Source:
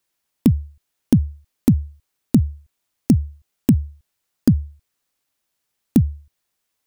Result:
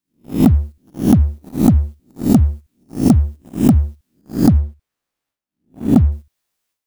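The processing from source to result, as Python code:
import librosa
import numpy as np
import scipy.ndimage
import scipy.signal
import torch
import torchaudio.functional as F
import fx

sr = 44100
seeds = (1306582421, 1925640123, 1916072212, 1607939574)

y = fx.spec_swells(x, sr, rise_s=0.37)
y = fx.high_shelf(y, sr, hz=3400.0, db=-10.0, at=(4.58, 6.12))
y = fx.transient(y, sr, attack_db=8, sustain_db=12)
y = fx.leveller(y, sr, passes=2)
y = y * librosa.db_to_amplitude(-8.5)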